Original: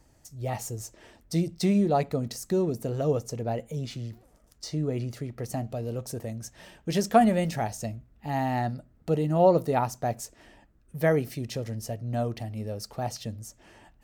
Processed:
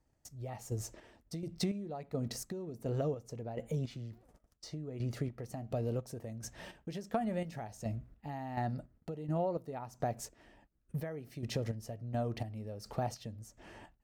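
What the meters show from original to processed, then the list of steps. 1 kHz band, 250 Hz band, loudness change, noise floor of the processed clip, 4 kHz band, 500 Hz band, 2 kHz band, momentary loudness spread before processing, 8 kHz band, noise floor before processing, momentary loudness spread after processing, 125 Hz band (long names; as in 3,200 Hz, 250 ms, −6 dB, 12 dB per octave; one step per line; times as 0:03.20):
−13.0 dB, −11.5 dB, −11.0 dB, −74 dBFS, −8.5 dB, −12.0 dB, −12.5 dB, 17 LU, −9.0 dB, −61 dBFS, 11 LU, −8.0 dB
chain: noise gate −57 dBFS, range −17 dB
high-shelf EQ 3,800 Hz −7 dB
downward compressor 12 to 1, threshold −32 dBFS, peak gain reduction 19 dB
square-wave tremolo 1.4 Hz, depth 60%, duty 40%
level +1.5 dB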